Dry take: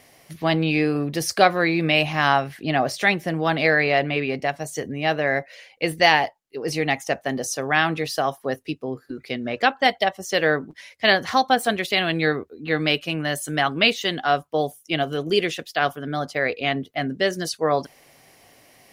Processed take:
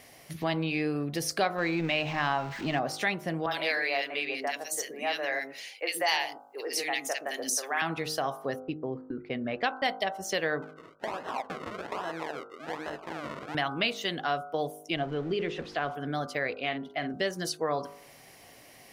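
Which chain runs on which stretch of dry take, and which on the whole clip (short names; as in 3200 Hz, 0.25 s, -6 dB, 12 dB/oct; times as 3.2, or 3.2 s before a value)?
1.58–2.79 zero-crossing step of -29.5 dBFS + running mean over 4 samples
3.46–7.82 HPF 240 Hz 24 dB/oct + tilt +2.5 dB/oct + three bands offset in time mids, highs, lows 50/120 ms, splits 350/1700 Hz
8.6–9.96 gate -46 dBFS, range -21 dB + low-pass opened by the level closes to 920 Hz, open at -16 dBFS
10.62–13.55 compressor 5:1, threshold -22 dBFS + decimation with a swept rate 37× 1.2 Hz + band-pass 1100 Hz, Q 0.81
14.96–15.95 zero-crossing step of -32.5 dBFS + tape spacing loss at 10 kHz 26 dB
16.55–17.14 LPF 3600 Hz 6 dB/oct + low shelf 210 Hz -9 dB + doubler 48 ms -10.5 dB
whole clip: de-hum 51.61 Hz, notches 30; dynamic EQ 970 Hz, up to +4 dB, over -38 dBFS, Q 5; compressor 2:1, threshold -33 dBFS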